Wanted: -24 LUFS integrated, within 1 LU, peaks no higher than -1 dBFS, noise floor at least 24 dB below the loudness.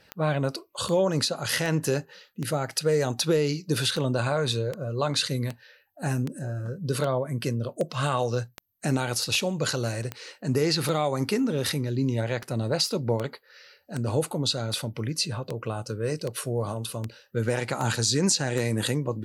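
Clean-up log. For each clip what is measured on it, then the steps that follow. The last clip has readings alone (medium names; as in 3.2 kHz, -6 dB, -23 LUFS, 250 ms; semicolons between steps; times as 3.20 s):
clicks found 25; loudness -27.5 LUFS; peak level -12.5 dBFS; loudness target -24.0 LUFS
-> de-click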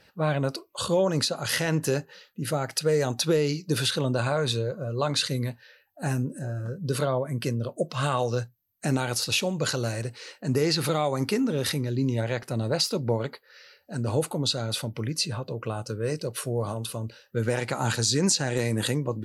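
clicks found 0; loudness -27.5 LUFS; peak level -12.5 dBFS; loudness target -24.0 LUFS
-> trim +3.5 dB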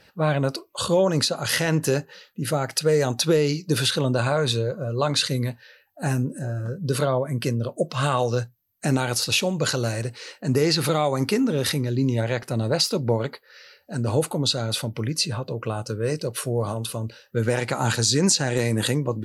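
loudness -24.0 LUFS; peak level -9.0 dBFS; noise floor -58 dBFS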